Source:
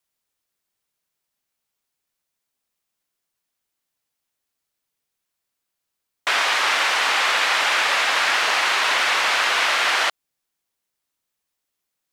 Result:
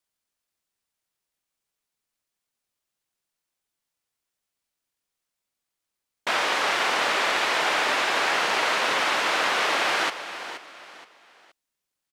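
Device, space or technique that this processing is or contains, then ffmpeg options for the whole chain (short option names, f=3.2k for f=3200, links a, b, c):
octave pedal: -filter_complex "[0:a]aecho=1:1:473|946|1419:0.251|0.0829|0.0274,asplit=2[a][b];[b]asetrate=22050,aresample=44100,atempo=2,volume=-2dB[c];[a][c]amix=inputs=2:normalize=0,volume=-6dB"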